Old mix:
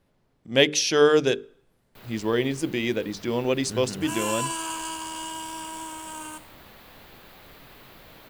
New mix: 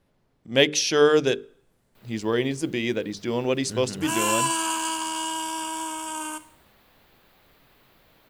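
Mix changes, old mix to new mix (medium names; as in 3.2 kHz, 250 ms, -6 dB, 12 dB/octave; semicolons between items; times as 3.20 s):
first sound -10.0 dB; second sound +5.5 dB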